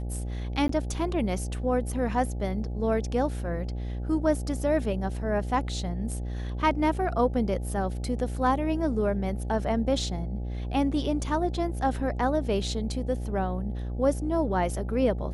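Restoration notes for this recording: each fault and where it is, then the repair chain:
buzz 60 Hz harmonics 14 -32 dBFS
0.68–0.69 s: dropout 13 ms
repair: de-hum 60 Hz, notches 14; interpolate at 0.68 s, 13 ms

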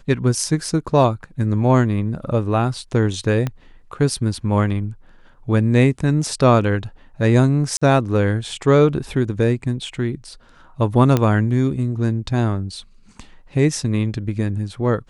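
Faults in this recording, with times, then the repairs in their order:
3.47 s: pop -11 dBFS
7.77–7.82 s: dropout 45 ms
11.17 s: pop -5 dBFS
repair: de-click; interpolate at 7.77 s, 45 ms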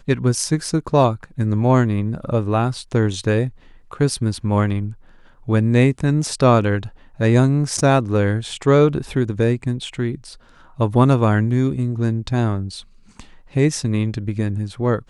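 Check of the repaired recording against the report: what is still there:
3.47 s: pop

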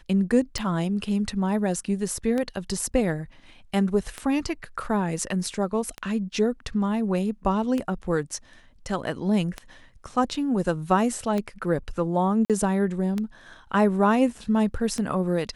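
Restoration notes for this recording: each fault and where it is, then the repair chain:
tick 33 1/3 rpm -15 dBFS
12.45–12.50 s: dropout 47 ms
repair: de-click; interpolate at 12.45 s, 47 ms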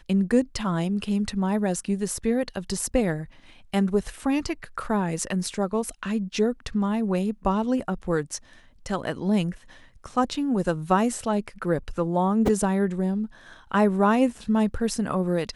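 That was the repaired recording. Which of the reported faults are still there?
nothing left

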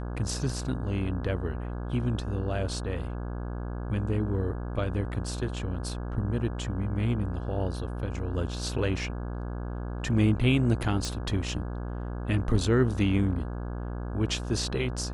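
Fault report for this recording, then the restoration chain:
buzz 60 Hz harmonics 28 -34 dBFS
11.05 s: pop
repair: de-click; de-hum 60 Hz, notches 28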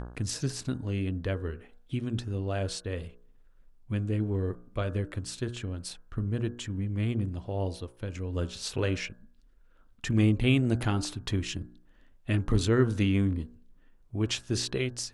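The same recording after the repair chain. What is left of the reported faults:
nothing left

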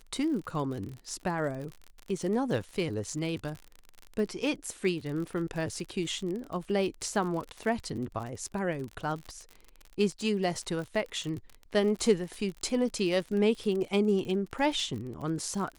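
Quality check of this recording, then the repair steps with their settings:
crackle 44 per s -35 dBFS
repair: de-click

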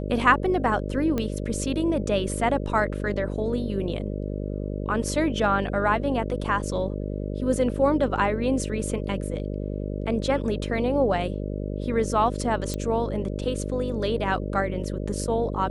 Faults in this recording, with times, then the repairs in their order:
buzz 50 Hz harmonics 12 -30 dBFS
1.18 s: pop -14 dBFS
12.74 s: pop -15 dBFS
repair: de-click; de-hum 50 Hz, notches 12

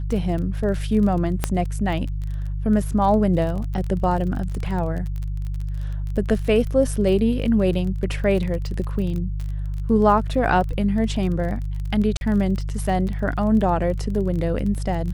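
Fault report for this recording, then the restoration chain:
crackle 27 per s -28 dBFS
hum 50 Hz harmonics 3 -26 dBFS
1.44 s: pop -6 dBFS
12.17–12.21 s: dropout 41 ms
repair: de-click; de-hum 50 Hz, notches 3; interpolate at 12.17 s, 41 ms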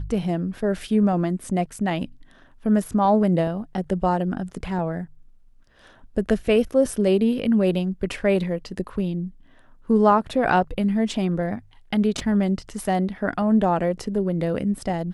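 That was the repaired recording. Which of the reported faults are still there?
nothing left

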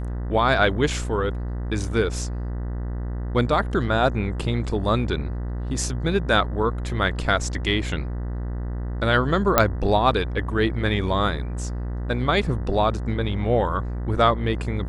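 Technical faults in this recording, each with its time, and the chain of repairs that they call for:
buzz 60 Hz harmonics 33 -28 dBFS
9.58 s: pop 0 dBFS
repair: de-click; de-hum 60 Hz, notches 33

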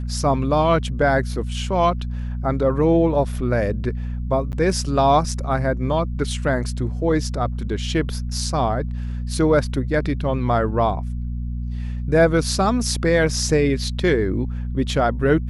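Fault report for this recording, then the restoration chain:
hum 60 Hz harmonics 4 -26 dBFS
4.52–4.53 s: dropout 9.5 ms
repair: de-hum 60 Hz, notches 4; interpolate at 4.52 s, 9.5 ms

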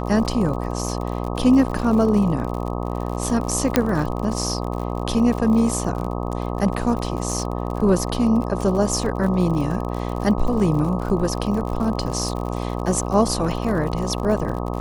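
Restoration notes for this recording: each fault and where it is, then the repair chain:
buzz 60 Hz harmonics 21 -26 dBFS
crackle 59 per s -28 dBFS
3.76 s: pop -1 dBFS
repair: de-click; de-hum 60 Hz, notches 21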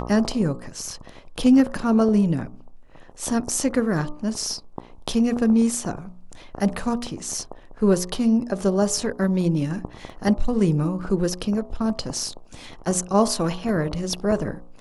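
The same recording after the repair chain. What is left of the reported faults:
3.76 s: pop

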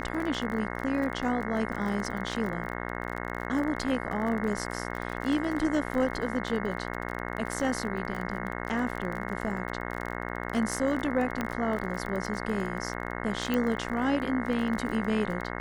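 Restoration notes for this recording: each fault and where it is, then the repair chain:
buzz 60 Hz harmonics 36 -35 dBFS
crackle 29 per s -33 dBFS
11.41 s: pop -16 dBFS
13.54 s: pop -16 dBFS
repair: de-click; de-hum 60 Hz, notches 36

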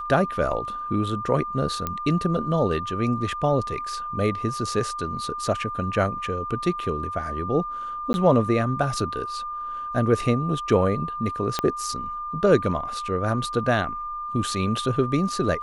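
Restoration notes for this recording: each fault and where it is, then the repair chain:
whine 1.2 kHz -29 dBFS
1.87 s: pop -12 dBFS
8.13–8.14 s: dropout 11 ms
11.59 s: pop -9 dBFS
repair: de-click; band-stop 1.2 kHz, Q 30; interpolate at 8.13 s, 11 ms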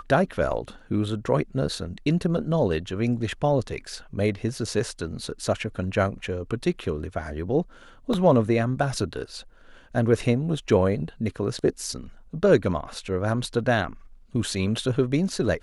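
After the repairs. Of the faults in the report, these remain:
1.87 s: pop
11.59 s: pop

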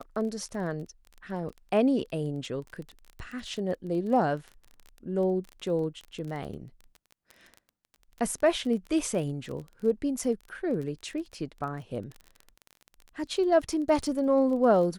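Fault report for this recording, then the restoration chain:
crackle 23 per s -35 dBFS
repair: de-click

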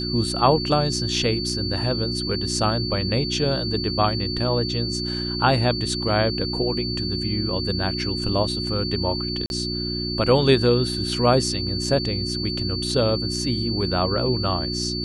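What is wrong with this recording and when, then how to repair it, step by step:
hum 60 Hz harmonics 6 -29 dBFS
whine 4.5 kHz -28 dBFS
9.46–9.50 s: dropout 41 ms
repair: de-hum 60 Hz, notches 6; band-stop 4.5 kHz, Q 30; interpolate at 9.46 s, 41 ms

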